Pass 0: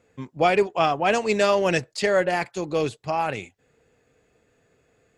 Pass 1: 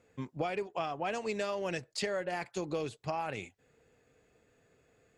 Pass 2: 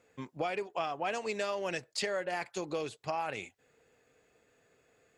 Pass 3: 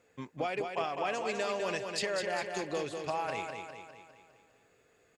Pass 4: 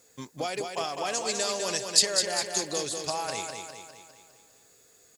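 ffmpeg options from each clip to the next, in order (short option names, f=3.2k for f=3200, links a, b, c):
-af "acompressor=threshold=-27dB:ratio=12,volume=-4dB"
-af "lowshelf=f=260:g=-9.5,volume=2dB"
-af "aecho=1:1:202|404|606|808|1010|1212|1414:0.531|0.276|0.144|0.0746|0.0388|0.0202|0.0105"
-af "aexciter=amount=7.5:drive=3.1:freq=3.8k,volume=1.5dB"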